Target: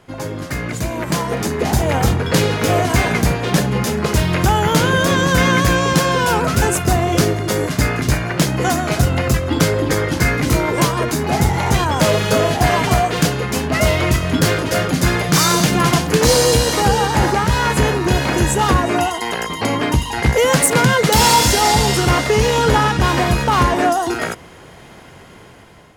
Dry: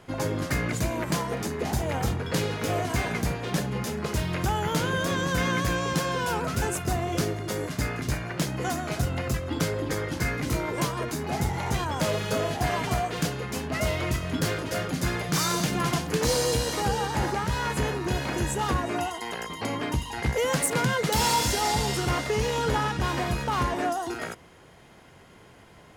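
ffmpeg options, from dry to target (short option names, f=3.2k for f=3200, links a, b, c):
-af "dynaudnorm=f=470:g=5:m=10.5dB,volume=2dB"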